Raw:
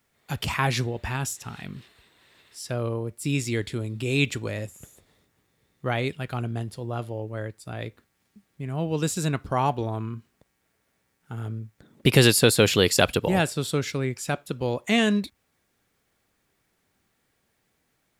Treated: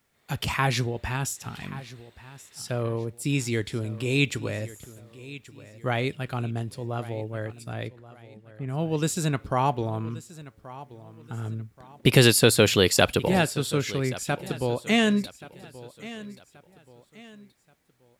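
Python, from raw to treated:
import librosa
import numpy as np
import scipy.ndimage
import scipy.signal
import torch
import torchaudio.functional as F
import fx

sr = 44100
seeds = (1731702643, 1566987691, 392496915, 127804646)

y = fx.lowpass(x, sr, hz=fx.line((7.87, 2800.0), (8.67, 1700.0)), slope=6, at=(7.87, 8.67), fade=0.02)
y = fx.echo_feedback(y, sr, ms=1129, feedback_pct=36, wet_db=-17.5)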